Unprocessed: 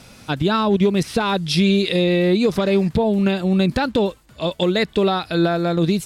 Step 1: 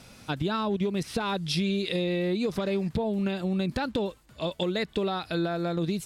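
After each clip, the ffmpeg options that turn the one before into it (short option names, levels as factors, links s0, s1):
-af "acompressor=threshold=0.1:ratio=2.5,volume=0.501"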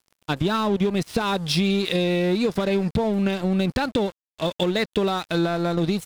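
-af "aeval=exprs='sgn(val(0))*max(abs(val(0))-0.0075,0)':c=same,volume=2.24"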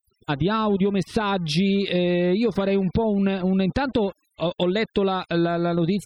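-af "aeval=exprs='val(0)+0.5*0.0251*sgn(val(0))':c=same,afftfilt=real='re*gte(hypot(re,im),0.0112)':imag='im*gte(hypot(re,im),0.0112)':win_size=1024:overlap=0.75,highshelf=f=3500:g=-6.5"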